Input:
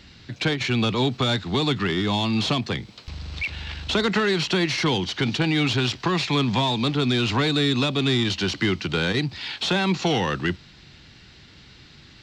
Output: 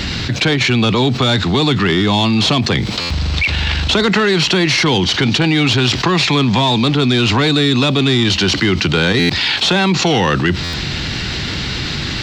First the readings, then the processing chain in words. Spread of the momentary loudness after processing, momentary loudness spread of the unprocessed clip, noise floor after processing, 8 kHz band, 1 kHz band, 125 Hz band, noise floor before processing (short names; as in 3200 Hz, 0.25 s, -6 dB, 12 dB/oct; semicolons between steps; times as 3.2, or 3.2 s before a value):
7 LU, 8 LU, -22 dBFS, +12.0 dB, +9.0 dB, +9.5 dB, -49 dBFS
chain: stuck buffer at 3/9.19/10.63, samples 512, times 8; fast leveller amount 70%; gain +6.5 dB